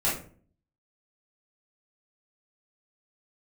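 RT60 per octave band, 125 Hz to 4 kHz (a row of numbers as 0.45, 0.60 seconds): 0.70, 0.65, 0.50, 0.40, 0.35, 0.25 seconds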